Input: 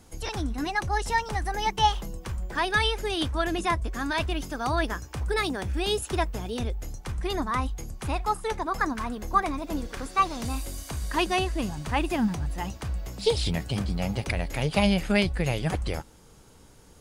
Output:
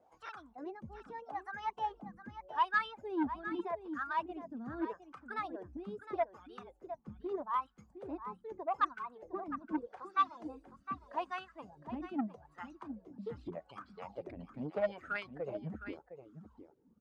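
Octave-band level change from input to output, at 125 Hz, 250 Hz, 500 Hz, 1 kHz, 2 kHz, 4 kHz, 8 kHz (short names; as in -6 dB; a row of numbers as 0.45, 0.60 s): -23.0 dB, -12.0 dB, -10.5 dB, -9.0 dB, -12.0 dB, -23.0 dB, under -30 dB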